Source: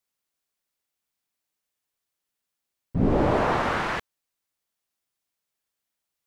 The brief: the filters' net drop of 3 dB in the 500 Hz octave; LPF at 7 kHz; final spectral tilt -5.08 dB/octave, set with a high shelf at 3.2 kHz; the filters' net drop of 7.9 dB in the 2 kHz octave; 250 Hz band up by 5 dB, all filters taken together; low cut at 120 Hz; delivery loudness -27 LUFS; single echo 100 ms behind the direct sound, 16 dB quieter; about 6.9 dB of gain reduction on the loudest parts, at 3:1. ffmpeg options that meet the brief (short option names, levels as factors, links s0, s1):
-af "highpass=120,lowpass=7000,equalizer=f=250:t=o:g=8.5,equalizer=f=500:t=o:g=-6,equalizer=f=2000:t=o:g=-8,highshelf=f=3200:g=-8,acompressor=threshold=0.0708:ratio=3,aecho=1:1:100:0.158,volume=1.19"